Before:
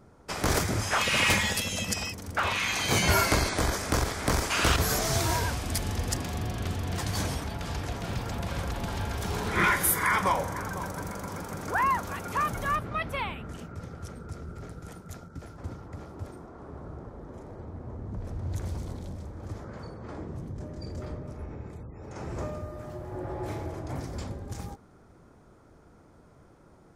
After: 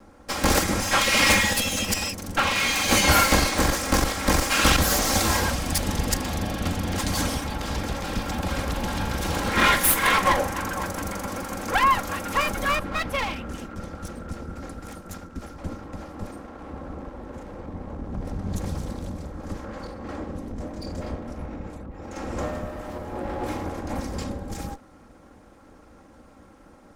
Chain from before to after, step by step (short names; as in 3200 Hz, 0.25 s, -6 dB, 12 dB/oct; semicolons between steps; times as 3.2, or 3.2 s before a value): minimum comb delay 3.7 ms; gain +7 dB